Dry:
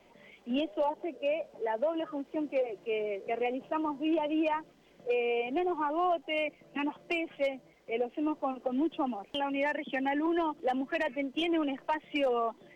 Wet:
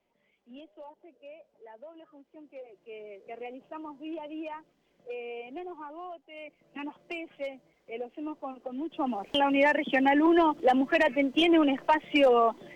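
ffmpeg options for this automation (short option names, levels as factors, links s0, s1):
-af "volume=5.31,afade=t=in:st=2.41:d=0.98:silence=0.398107,afade=t=out:st=5.57:d=0.74:silence=0.446684,afade=t=in:st=6.31:d=0.48:silence=0.298538,afade=t=in:st=8.88:d=0.43:silence=0.223872"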